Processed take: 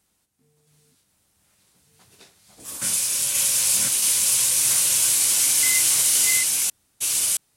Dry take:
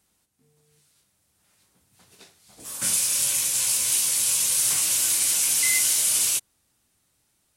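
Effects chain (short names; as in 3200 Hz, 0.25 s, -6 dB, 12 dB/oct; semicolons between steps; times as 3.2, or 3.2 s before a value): reverse delay 0.67 s, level 0 dB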